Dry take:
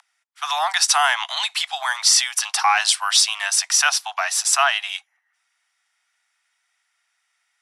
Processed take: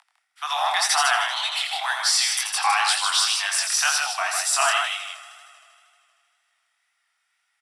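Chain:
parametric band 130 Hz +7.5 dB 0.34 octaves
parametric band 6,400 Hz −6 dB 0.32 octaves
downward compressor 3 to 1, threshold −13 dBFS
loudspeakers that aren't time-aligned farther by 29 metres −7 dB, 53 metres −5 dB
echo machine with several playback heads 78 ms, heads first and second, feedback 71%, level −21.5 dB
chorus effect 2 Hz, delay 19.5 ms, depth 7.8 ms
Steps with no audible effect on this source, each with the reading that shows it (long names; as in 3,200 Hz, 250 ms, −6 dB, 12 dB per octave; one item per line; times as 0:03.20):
parametric band 130 Hz: nothing at its input below 570 Hz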